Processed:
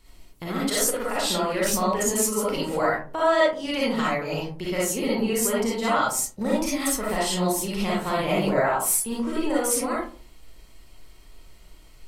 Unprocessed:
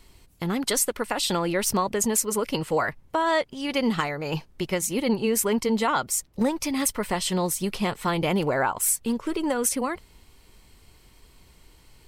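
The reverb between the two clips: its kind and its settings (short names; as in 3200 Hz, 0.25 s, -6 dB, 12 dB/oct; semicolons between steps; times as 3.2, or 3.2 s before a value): digital reverb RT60 0.43 s, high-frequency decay 0.4×, pre-delay 15 ms, DRR -7 dB; gain -6 dB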